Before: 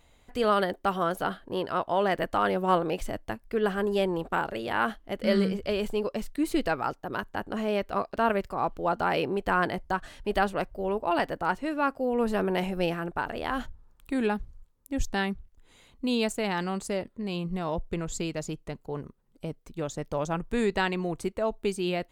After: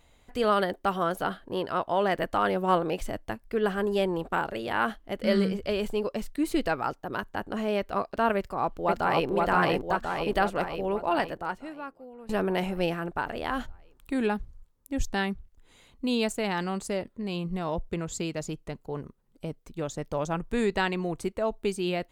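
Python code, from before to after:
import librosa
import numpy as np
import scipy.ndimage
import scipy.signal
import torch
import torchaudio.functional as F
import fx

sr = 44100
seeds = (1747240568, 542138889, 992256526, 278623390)

y = fx.echo_throw(x, sr, start_s=8.36, length_s=0.93, ms=520, feedback_pct=60, wet_db=-0.5)
y = fx.highpass(y, sr, hz=45.0, slope=12, at=(17.89, 18.41))
y = fx.edit(y, sr, fx.fade_out_to(start_s=11.15, length_s=1.14, curve='qua', floor_db=-21.0), tone=tone)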